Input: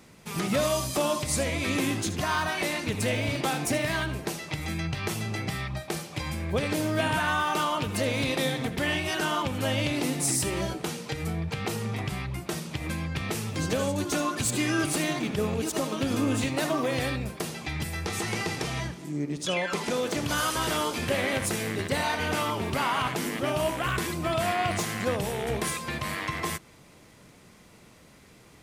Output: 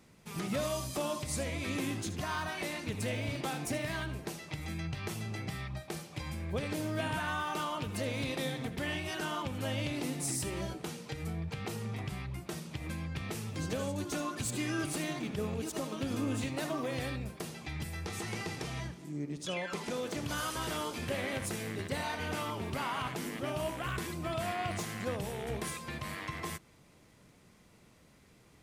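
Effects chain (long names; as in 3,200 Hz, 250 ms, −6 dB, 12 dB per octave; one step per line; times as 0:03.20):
low-shelf EQ 230 Hz +3.5 dB
level −9 dB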